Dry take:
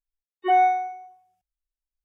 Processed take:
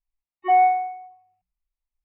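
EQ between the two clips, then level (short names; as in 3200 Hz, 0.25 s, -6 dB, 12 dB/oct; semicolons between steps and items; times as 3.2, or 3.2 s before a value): air absorption 380 m; notches 60/120/180 Hz; fixed phaser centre 2300 Hz, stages 8; +5.5 dB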